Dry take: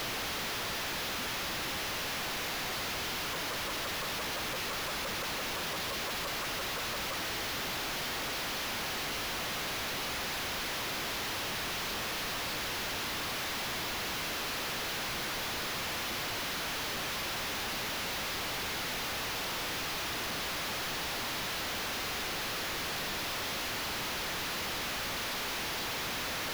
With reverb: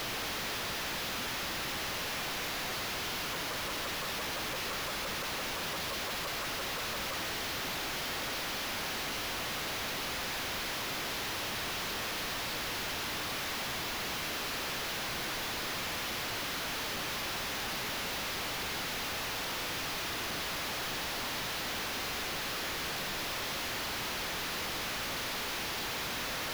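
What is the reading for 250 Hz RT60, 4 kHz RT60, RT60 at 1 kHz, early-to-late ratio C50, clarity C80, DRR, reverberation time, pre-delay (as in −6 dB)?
2.2 s, 1.5 s, 1.7 s, 11.0 dB, 12.0 dB, 10.0 dB, 1.8 s, 36 ms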